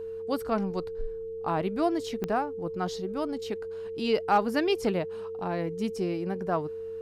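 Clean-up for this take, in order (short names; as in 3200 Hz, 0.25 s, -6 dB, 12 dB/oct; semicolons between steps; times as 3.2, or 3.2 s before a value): de-click; de-hum 95.4 Hz, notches 3; notch 450 Hz, Q 30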